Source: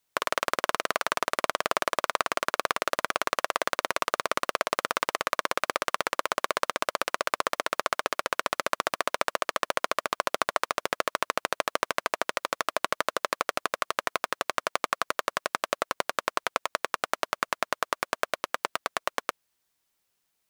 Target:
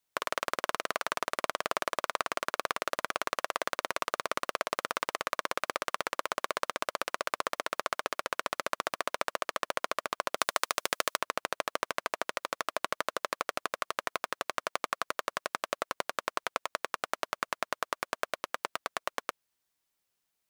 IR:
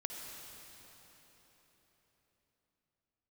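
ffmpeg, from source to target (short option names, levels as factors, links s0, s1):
-filter_complex "[0:a]asettb=1/sr,asplit=3[s0][s1][s2];[s0]atrim=end=10.374[s3];[s1]atrim=start=10.37:end=11.17,asetpts=PTS-STARTPTS,afade=t=in:d=0.004:c=qsin,afade=t=out:st=0.796:d=0.004:c=qsin,highshelf=f=2900:g=11[s4];[s2]atrim=start=11.166[s5];[s3][s4]acrossfade=d=0.004:c1=hsin:c2=qsin[s6];[s6][s5]acrossfade=d=0.004:c1=qsin:c2=hsin,volume=0.562"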